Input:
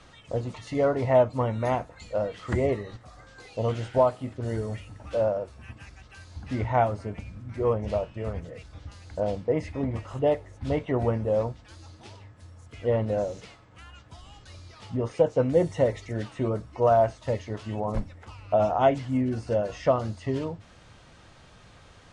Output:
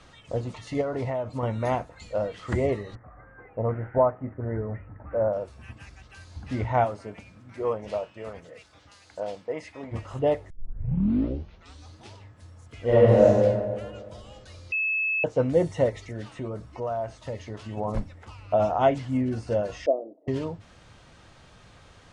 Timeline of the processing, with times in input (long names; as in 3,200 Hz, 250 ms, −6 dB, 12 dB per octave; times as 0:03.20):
0:00.81–0:01.43: downward compressor 12 to 1, threshold −25 dBFS
0:02.95–0:05.33: Butterworth low-pass 2,000 Hz 48 dB per octave
0:06.84–0:09.91: high-pass filter 290 Hz → 990 Hz 6 dB per octave
0:10.50: tape start 1.44 s
0:12.82–0:13.26: thrown reverb, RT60 1.8 s, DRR −8 dB
0:14.72–0:15.24: beep over 2,600 Hz −23 dBFS
0:15.89–0:17.77: downward compressor 2 to 1, threshold −34 dBFS
0:19.86–0:20.28: Chebyshev band-pass filter 290–670 Hz, order 3